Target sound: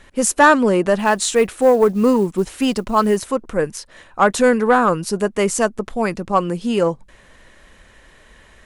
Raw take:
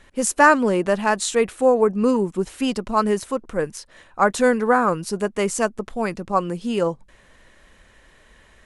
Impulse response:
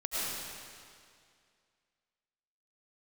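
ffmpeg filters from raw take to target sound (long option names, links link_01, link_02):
-filter_complex "[0:a]acontrast=50,asettb=1/sr,asplit=3[link_01][link_02][link_03];[link_01]atrim=end=0.994[link_04];[link_02]atrim=start=0.99:end=3.17,asetpts=PTS-STARTPTS,afade=type=in:duration=0.004:curve=qsin,afade=type=out:start_time=2.176:duration=0.004:curve=qsin,acrusher=bits=8:mode=log:mix=0:aa=0.000001[link_05];[link_03]atrim=start=3.166[link_06];[link_04][link_05]acrossfade=duration=0.004:curve1=hsin:curve2=qsin[link_07];[link_07][link_06]acrossfade=duration=0.004:curve1=qsin:curve2=hsin,volume=-1.5dB"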